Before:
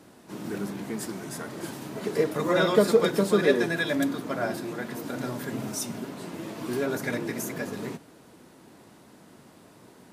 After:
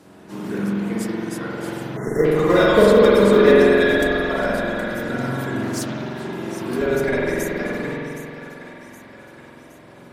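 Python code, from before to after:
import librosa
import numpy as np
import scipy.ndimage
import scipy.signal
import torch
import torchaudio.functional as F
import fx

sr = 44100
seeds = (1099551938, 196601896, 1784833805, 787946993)

p1 = x + fx.echo_split(x, sr, split_hz=600.0, low_ms=179, high_ms=768, feedback_pct=52, wet_db=-12.0, dry=0)
p2 = fx.dereverb_blind(p1, sr, rt60_s=0.98)
p3 = fx.high_shelf(p2, sr, hz=12000.0, db=-5.5)
p4 = fx.schmitt(p3, sr, flips_db=-20.0)
p5 = p3 + F.gain(torch.from_numpy(p4), -6.0).numpy()
p6 = fx.rev_spring(p5, sr, rt60_s=2.7, pass_ms=(45,), chirp_ms=75, drr_db=-6.0)
p7 = fx.spec_erase(p6, sr, start_s=1.97, length_s=0.28, low_hz=2100.0, high_hz=5400.0)
p8 = fx.doppler_dist(p7, sr, depth_ms=0.31, at=(5.62, 6.3))
y = F.gain(torch.from_numpy(p8), 3.0).numpy()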